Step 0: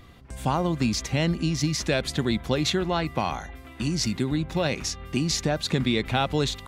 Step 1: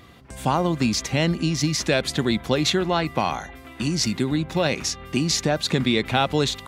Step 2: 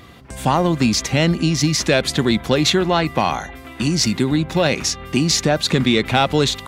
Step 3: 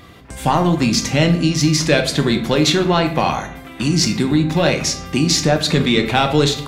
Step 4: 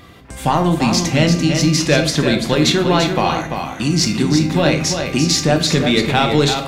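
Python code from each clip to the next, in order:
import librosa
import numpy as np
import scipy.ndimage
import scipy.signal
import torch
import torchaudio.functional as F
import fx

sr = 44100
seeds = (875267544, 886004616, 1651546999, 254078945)

y1 = fx.highpass(x, sr, hz=130.0, slope=6)
y1 = y1 * librosa.db_to_amplitude(4.0)
y2 = 10.0 ** (-8.5 / 20.0) * np.tanh(y1 / 10.0 ** (-8.5 / 20.0))
y2 = y2 * librosa.db_to_amplitude(5.5)
y3 = fx.room_shoebox(y2, sr, seeds[0], volume_m3=98.0, walls='mixed', distance_m=0.43)
y4 = y3 + 10.0 ** (-6.5 / 20.0) * np.pad(y3, (int(341 * sr / 1000.0), 0))[:len(y3)]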